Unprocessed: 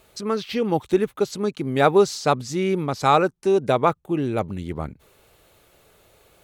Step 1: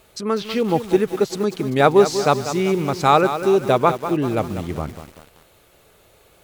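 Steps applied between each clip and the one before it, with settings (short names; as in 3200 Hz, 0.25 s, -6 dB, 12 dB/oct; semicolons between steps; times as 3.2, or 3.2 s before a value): lo-fi delay 0.194 s, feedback 55%, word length 6-bit, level -10 dB; gain +2.5 dB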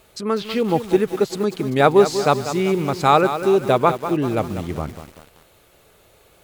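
dynamic EQ 5800 Hz, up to -5 dB, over -51 dBFS, Q 6.4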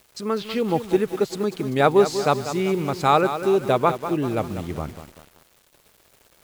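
requantised 8-bit, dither none; gain -3 dB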